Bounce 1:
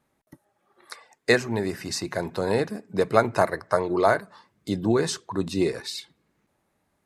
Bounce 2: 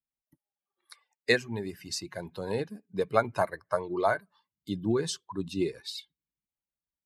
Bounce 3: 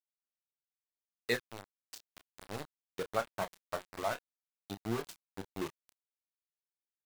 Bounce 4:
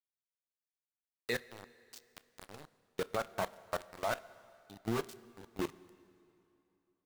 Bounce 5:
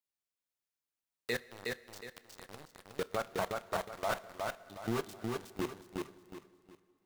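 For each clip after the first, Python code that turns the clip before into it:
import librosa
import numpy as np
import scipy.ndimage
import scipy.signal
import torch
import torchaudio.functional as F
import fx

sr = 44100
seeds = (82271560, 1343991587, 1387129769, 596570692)

y1 = fx.bin_expand(x, sr, power=1.5)
y1 = fx.peak_eq(y1, sr, hz=3200.0, db=4.5, octaves=0.97)
y1 = F.gain(torch.from_numpy(y1), -4.0).numpy()
y2 = np.where(np.abs(y1) >= 10.0 ** (-26.0 / 20.0), y1, 0.0)
y2 = fx.chorus_voices(y2, sr, voices=2, hz=1.5, base_ms=28, depth_ms=3.0, mix_pct=25)
y2 = F.gain(torch.from_numpy(y2), -6.5).numpy()
y3 = fx.level_steps(y2, sr, step_db=19)
y3 = fx.rev_plate(y3, sr, seeds[0], rt60_s=2.8, hf_ratio=0.85, predelay_ms=0, drr_db=17.5)
y3 = F.gain(torch.from_numpy(y3), 5.5).numpy()
y4 = fx.echo_feedback(y3, sr, ms=365, feedback_pct=32, wet_db=-3)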